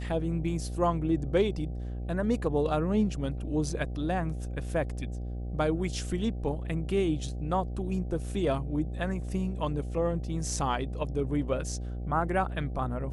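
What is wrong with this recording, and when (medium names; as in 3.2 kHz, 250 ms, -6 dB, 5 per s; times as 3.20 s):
buzz 60 Hz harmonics 13 -35 dBFS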